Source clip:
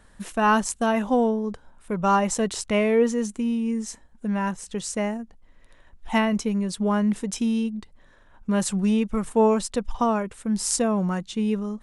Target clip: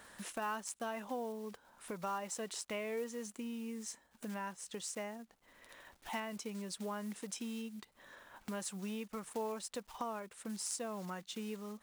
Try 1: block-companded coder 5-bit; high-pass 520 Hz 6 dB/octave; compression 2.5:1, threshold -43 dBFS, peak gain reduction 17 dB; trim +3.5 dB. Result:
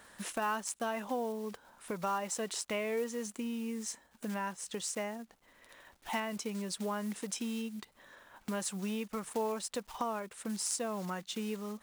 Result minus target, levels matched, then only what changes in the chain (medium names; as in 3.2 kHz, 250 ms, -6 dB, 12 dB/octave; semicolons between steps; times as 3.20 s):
compression: peak gain reduction -5 dB
change: compression 2.5:1, threshold -51.5 dBFS, peak gain reduction 22.5 dB